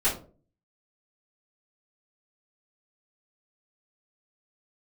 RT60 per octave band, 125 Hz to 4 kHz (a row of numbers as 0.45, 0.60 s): 0.60, 0.55, 0.50, 0.35, 0.25, 0.20 s